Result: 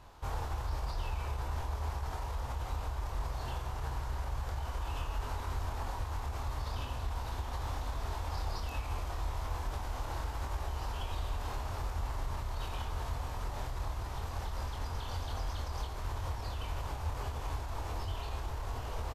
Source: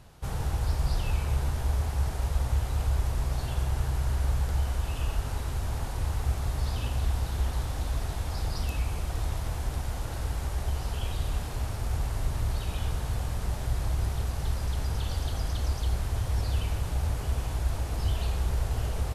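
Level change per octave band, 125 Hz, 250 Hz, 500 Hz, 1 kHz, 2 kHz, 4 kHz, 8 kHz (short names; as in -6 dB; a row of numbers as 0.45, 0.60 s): -9.5, -9.0, -4.5, 0.0, -4.0, -5.5, -9.0 dB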